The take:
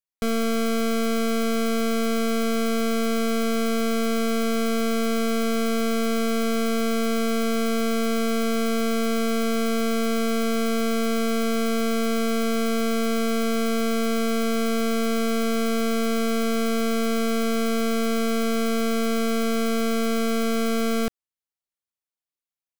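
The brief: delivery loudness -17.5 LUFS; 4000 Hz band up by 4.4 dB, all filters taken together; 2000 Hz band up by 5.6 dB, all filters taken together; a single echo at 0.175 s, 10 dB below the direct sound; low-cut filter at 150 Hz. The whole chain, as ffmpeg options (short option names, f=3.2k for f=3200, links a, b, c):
-af "highpass=150,equalizer=f=2k:t=o:g=6,equalizer=f=4k:t=o:g=3.5,aecho=1:1:175:0.316,volume=5.5dB"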